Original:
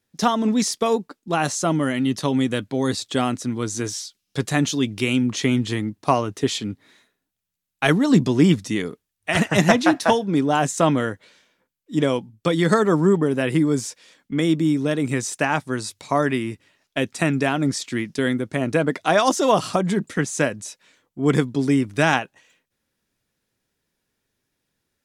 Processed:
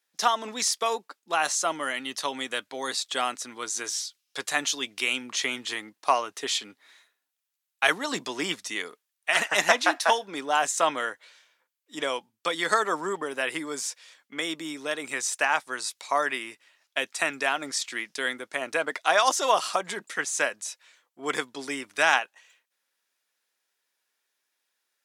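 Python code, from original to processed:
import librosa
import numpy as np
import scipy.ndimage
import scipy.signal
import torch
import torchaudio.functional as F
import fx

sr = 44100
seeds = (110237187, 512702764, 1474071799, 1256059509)

y = scipy.signal.sosfilt(scipy.signal.butter(2, 810.0, 'highpass', fs=sr, output='sos'), x)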